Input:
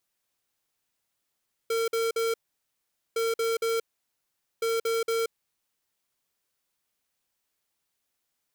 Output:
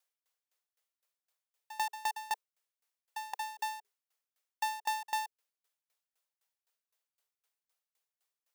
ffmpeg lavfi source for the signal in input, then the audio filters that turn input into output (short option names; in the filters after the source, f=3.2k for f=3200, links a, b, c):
-f lavfi -i "aevalsrc='0.0473*(2*lt(mod(456*t,1),0.5)-1)*clip(min(mod(mod(t,1.46),0.23),0.18-mod(mod(t,1.46),0.23))/0.005,0,1)*lt(mod(t,1.46),0.69)':d=4.38:s=44100"
-filter_complex "[0:a]acrossover=split=330|3000[a][b][c];[b]acompressor=threshold=-29dB:ratio=6[d];[a][d][c]amix=inputs=3:normalize=0,afreqshift=410,aeval=exprs='val(0)*pow(10,-24*if(lt(mod(3.9*n/s,1),2*abs(3.9)/1000),1-mod(3.9*n/s,1)/(2*abs(3.9)/1000),(mod(3.9*n/s,1)-2*abs(3.9)/1000)/(1-2*abs(3.9)/1000))/20)':c=same"